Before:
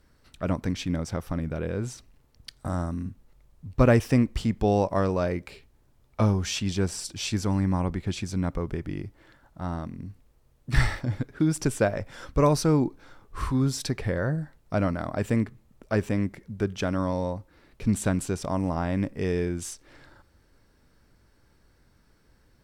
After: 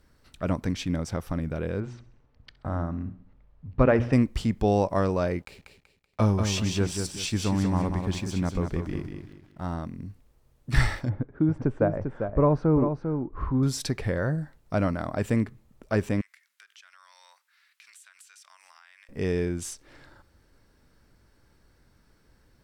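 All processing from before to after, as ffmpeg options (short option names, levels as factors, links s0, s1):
-filter_complex "[0:a]asettb=1/sr,asplit=3[s0][s1][s2];[s0]atrim=end=1.804[s3];[s1]atrim=start=1.8:end=4.13,asetpts=PTS-STARTPTS,afade=t=in:d=0.004:c=qsin,afade=t=out:st=2.326:d=0.004:c=qsin,lowpass=2400,bandreject=f=60:t=h:w=6,bandreject=f=120:t=h:w=6,bandreject=f=180:t=h:w=6,bandreject=f=240:t=h:w=6,bandreject=f=300:t=h:w=6,bandreject=f=360:t=h:w=6,aecho=1:1:66|132|198|264|330:0.119|0.0654|0.036|0.0198|0.0109,atrim=end_sample=102753[s4];[s2]atrim=start=4.126[s5];[s3][s4]acrossfade=d=0.004:c1=hsin:c2=qsin[s6];[s6][s5]acrossfade=d=0.004:c1=qsin:c2=hsin,asettb=1/sr,asplit=3[s7][s8][s9];[s7]atrim=end=5.394[s10];[s8]atrim=start=5.39:end=9.73,asetpts=PTS-STARTPTS,afade=t=in:d=0.004:c=qsin,afade=t=out:st=4.336:d=0.004:c=qsin,aeval=exprs='sgn(val(0))*max(abs(val(0))-0.00188,0)':c=same,aecho=1:1:190|380|570|760:0.501|0.16|0.0513|0.0164,atrim=end_sample=191394[s11];[s9]atrim=start=9.726[s12];[s10][s11]acrossfade=d=0.004:c1=hsin:c2=qsin[s13];[s13][s12]acrossfade=d=0.004:c1=qsin:c2=hsin,asettb=1/sr,asplit=3[s14][s15][s16];[s14]atrim=end=11.094[s17];[s15]atrim=start=11.09:end=13.63,asetpts=PTS-STARTPTS,afade=t=in:d=0.004:c=qsin,afade=t=out:st=2.536:d=0.004:c=qsin,lowpass=1100,aecho=1:1:397:0.447,atrim=end_sample=112014[s18];[s16]atrim=start=13.626[s19];[s17][s18]acrossfade=d=0.004:c1=hsin:c2=qsin[s20];[s20][s19]acrossfade=d=0.004:c1=qsin:c2=hsin,asettb=1/sr,asplit=3[s21][s22][s23];[s21]atrim=end=16.214[s24];[s22]atrim=start=16.21:end=19.09,asetpts=PTS-STARTPTS,afade=t=in:d=0.004:c=qsin,afade=t=out:st=2.876:d=0.004:c=qsin,highpass=f=1500:w=0.5412,highpass=f=1500:w=1.3066,acompressor=threshold=0.00355:ratio=10:attack=3.2:release=140:knee=1:detection=peak[s25];[s23]atrim=start=19.086[s26];[s24][s25]acrossfade=d=0.004:c1=hsin:c2=qsin[s27];[s27][s26]acrossfade=d=0.004:c1=qsin:c2=hsin"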